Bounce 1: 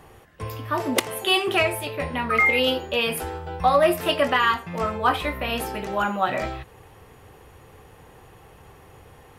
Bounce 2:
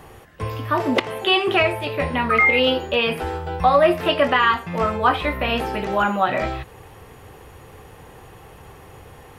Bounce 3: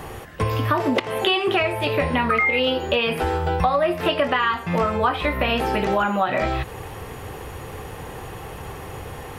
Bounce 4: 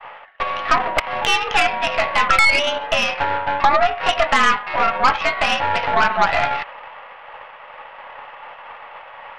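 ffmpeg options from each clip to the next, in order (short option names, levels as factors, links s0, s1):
-filter_complex "[0:a]acrossover=split=4200[s0][s1];[s1]acompressor=threshold=0.00251:ratio=4:attack=1:release=60[s2];[s0][s2]amix=inputs=2:normalize=0,asplit=2[s3][s4];[s4]alimiter=limit=0.168:level=0:latency=1:release=347,volume=0.841[s5];[s3][s5]amix=inputs=2:normalize=0"
-af "acompressor=threshold=0.0447:ratio=5,volume=2.66"
-af "highpass=f=600:t=q:w=0.5412,highpass=f=600:t=q:w=1.307,lowpass=f=2900:t=q:w=0.5176,lowpass=f=2900:t=q:w=0.7071,lowpass=f=2900:t=q:w=1.932,afreqshift=74,aeval=exprs='0.376*(cos(1*acos(clip(val(0)/0.376,-1,1)))-cos(1*PI/2))+0.0531*(cos(6*acos(clip(val(0)/0.376,-1,1)))-cos(6*PI/2))':c=same,agate=range=0.0224:threshold=0.0158:ratio=3:detection=peak,volume=1.88"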